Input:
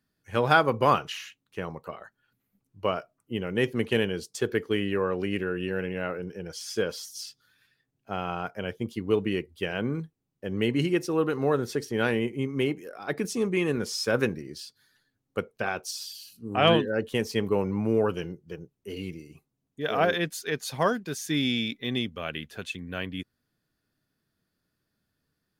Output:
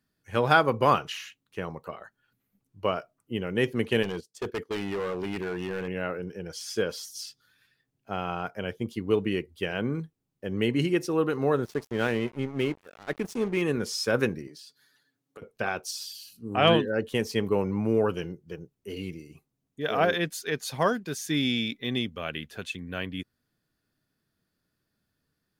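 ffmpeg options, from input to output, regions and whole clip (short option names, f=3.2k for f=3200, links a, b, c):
-filter_complex "[0:a]asettb=1/sr,asplit=3[a][b][c];[a]atrim=end=4.034[d];[b]atrim=start=4.03:end=5.88,asetpts=PTS-STARTPTS,afade=t=in:d=0.004:c=qsin,afade=t=out:st=1.846:d=0.004:c=qsin,agate=range=-15dB:threshold=-36dB:ratio=16:release=100:detection=peak,volume=27.5dB,asoftclip=hard,volume=-27.5dB[e];[c]atrim=start=5.876[f];[d][e]acrossfade=d=0.004:c1=hsin:c2=qsin[g];[g][f]acrossfade=d=0.004:c1=qsin:c2=hsin,asettb=1/sr,asplit=3[h][i][j];[h]atrim=end=11.654[k];[i]atrim=start=11.65:end=13.62,asetpts=PTS-STARTPTS,afade=t=in:d=0.004:c=qsin,afade=t=out:st=1.966:d=0.004:c=qsin,highshelf=f=4.8k:g=-4.5,aeval=exprs='sgn(val(0))*max(abs(val(0))-0.01,0)':c=same[l];[j]atrim=start=13.616[m];[k][l]acrossfade=d=0.004:c1=hsin:c2=qsin[n];[n][m]acrossfade=d=0.004:c1=qsin:c2=hsin,asettb=1/sr,asplit=3[o][p][q];[o]atrim=end=14.474[r];[p]atrim=start=14.47:end=15.42,asetpts=PTS-STARTPTS,afade=t=in:d=0.004:c=qsin,afade=t=out:st=0.946:d=0.004:c=qsin,highpass=180,aecho=1:1:7:0.51,atrim=end_sample=41895,acompressor=threshold=-44dB:ratio=6:attack=3.2:release=140:knee=1:detection=peak[s];[q]atrim=start=15.416[t];[r][s]acrossfade=d=0.004:c1=hsin:c2=qsin[u];[u][t]acrossfade=d=0.004:c1=qsin:c2=hsin"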